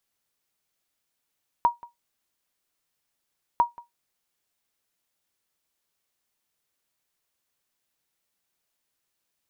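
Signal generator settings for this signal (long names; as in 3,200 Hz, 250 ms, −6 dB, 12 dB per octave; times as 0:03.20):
ping with an echo 951 Hz, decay 0.16 s, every 1.95 s, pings 2, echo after 0.18 s, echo −23 dB −11 dBFS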